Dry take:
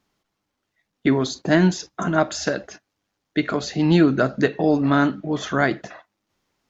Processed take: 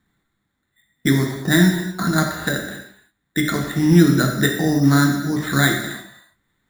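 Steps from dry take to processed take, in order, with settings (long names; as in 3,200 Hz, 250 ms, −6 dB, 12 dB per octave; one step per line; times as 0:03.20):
drawn EQ curve 190 Hz 0 dB, 360 Hz −7 dB, 560 Hz −12 dB, 1,100 Hz −7 dB, 1,900 Hz +4 dB, 2,900 Hz −17 dB
in parallel at −3 dB: downward compressor, threshold −26 dBFS, peak gain reduction 12 dB
on the sum: decimation without filtering 8×
reverb whose tail is shaped and stops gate 360 ms falling, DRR 1.5 dB
level +1 dB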